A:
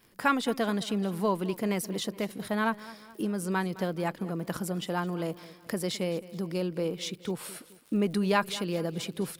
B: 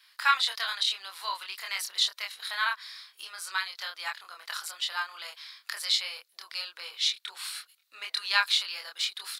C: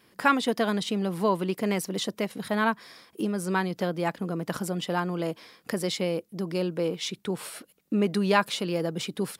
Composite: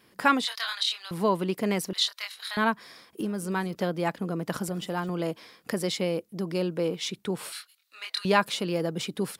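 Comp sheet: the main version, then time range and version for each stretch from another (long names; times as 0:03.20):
C
0:00.45–0:01.11: punch in from B
0:01.93–0:02.57: punch in from B
0:03.21–0:03.75: punch in from A
0:04.69–0:05.09: punch in from A
0:07.52–0:08.25: punch in from B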